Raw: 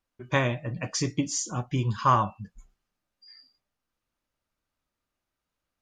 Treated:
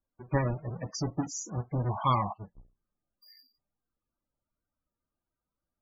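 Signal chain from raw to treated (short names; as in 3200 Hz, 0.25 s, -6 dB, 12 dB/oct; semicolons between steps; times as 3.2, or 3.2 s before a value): half-waves squared off; 1.89–2.32 band noise 640–1100 Hz -30 dBFS; loudest bins only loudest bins 32; gain -7.5 dB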